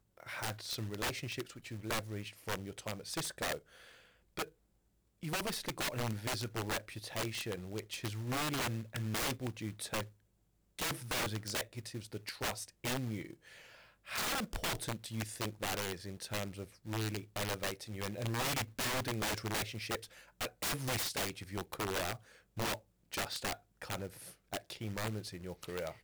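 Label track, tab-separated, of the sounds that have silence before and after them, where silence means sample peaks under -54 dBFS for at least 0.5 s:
5.220000	10.100000	sound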